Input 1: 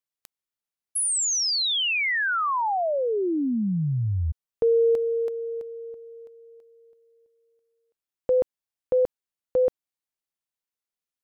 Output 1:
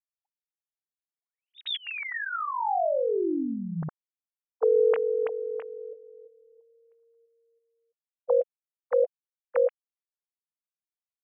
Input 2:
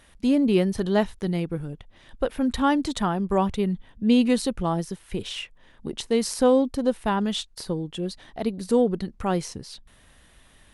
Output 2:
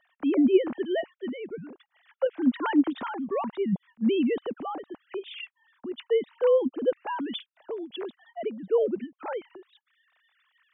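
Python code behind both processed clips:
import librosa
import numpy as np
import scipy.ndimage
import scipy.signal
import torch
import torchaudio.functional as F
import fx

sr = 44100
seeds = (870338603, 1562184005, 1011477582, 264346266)

y = fx.sine_speech(x, sr)
y = y * librosa.db_to_amplitude(-3.5)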